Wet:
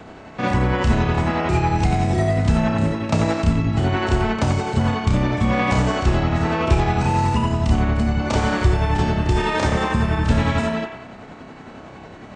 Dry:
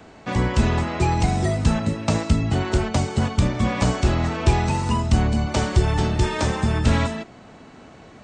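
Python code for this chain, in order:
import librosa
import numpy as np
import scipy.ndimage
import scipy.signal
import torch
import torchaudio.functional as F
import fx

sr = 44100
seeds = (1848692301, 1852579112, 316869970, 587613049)

p1 = fx.high_shelf(x, sr, hz=4400.0, db=-8.0)
p2 = fx.over_compress(p1, sr, threshold_db=-25.0, ratio=-1.0)
p3 = p1 + (p2 * librosa.db_to_amplitude(-2.5))
p4 = fx.stretch_grains(p3, sr, factor=1.5, grain_ms=184.0)
y = fx.echo_wet_bandpass(p4, sr, ms=90, feedback_pct=52, hz=1500.0, wet_db=-4.5)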